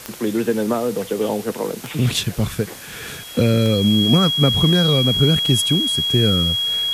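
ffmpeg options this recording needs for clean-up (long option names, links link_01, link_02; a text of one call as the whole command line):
ffmpeg -i in.wav -af "adeclick=threshold=4,bandreject=frequency=3300:width=30,afwtdn=0.014" out.wav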